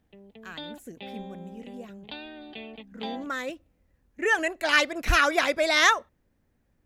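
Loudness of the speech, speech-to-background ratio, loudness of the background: -23.5 LUFS, 19.0 dB, -42.5 LUFS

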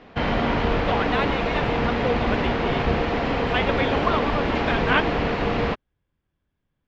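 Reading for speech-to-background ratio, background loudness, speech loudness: -5.0 dB, -23.5 LUFS, -28.5 LUFS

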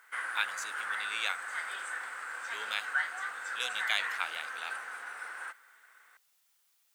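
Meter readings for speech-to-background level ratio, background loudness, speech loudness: 0.5 dB, -37.0 LUFS, -36.5 LUFS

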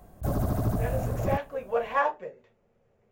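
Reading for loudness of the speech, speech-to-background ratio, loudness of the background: -31.0 LUFS, -1.0 dB, -30.0 LUFS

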